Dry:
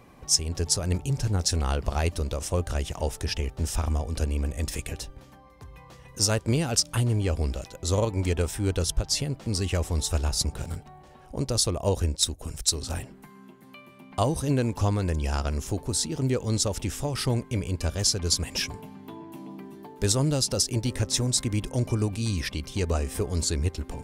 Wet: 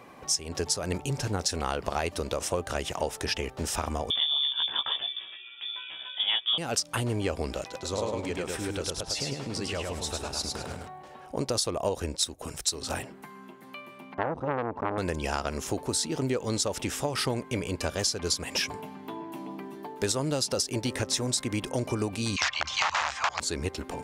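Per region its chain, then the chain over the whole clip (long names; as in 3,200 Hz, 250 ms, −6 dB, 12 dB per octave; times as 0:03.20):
0:04.10–0:06.58: voice inversion scrambler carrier 3,500 Hz + mains-hum notches 50/100/150 Hz + double-tracking delay 16 ms −3 dB
0:07.63–0:10.87: high-shelf EQ 10,000 Hz −9 dB + downward compressor 2 to 1, threshold −34 dBFS + repeating echo 104 ms, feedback 32%, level −3 dB
0:14.14–0:14.98: low-pass filter 1,100 Hz + saturating transformer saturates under 1,000 Hz
0:22.36–0:23.40: all-pass dispersion lows, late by 59 ms, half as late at 790 Hz + wrap-around overflow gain 22.5 dB + drawn EQ curve 110 Hz 0 dB, 200 Hz −12 dB, 450 Hz −13 dB, 630 Hz +3 dB, 980 Hz +12 dB, 7,000 Hz +7 dB, 11,000 Hz −28 dB
whole clip: high-pass filter 480 Hz 6 dB per octave; high-shelf EQ 3,600 Hz −7 dB; downward compressor, threshold −32 dBFS; level +7.5 dB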